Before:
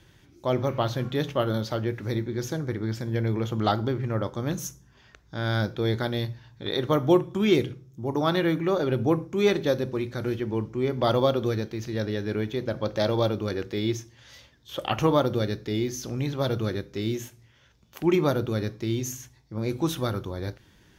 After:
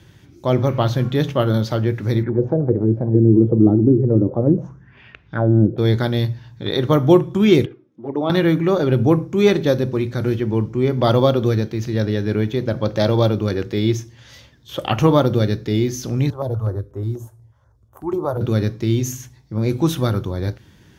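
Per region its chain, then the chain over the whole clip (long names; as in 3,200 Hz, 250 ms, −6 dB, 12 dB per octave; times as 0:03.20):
0:02.23–0:05.78: high-pass filter 60 Hz + envelope-controlled low-pass 320–2,900 Hz down, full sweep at −23 dBFS
0:07.65–0:08.30: band-pass filter 280–2,500 Hz + high-frequency loss of the air 61 metres + flanger swept by the level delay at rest 4.5 ms, full sweep at −25 dBFS
0:16.30–0:18.41: drawn EQ curve 110 Hz 0 dB, 160 Hz −19 dB, 250 Hz −10 dB, 660 Hz −1 dB, 1,100 Hz 0 dB, 2,500 Hz −27 dB, 4,300 Hz −19 dB, 6,100 Hz −17 dB, 9,100 Hz −6 dB, 14,000 Hz −11 dB + notch on a step sequencer 8.2 Hz 230–4,600 Hz
whole clip: high-pass filter 78 Hz; low-shelf EQ 220 Hz +8.5 dB; level +5 dB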